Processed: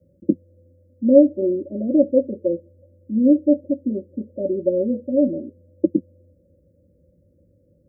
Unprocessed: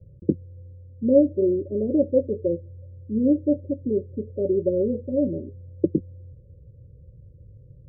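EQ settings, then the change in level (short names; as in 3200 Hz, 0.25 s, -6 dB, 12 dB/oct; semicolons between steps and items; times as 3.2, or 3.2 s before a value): HPF 170 Hz 12 dB/oct; fixed phaser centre 640 Hz, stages 8; +6.0 dB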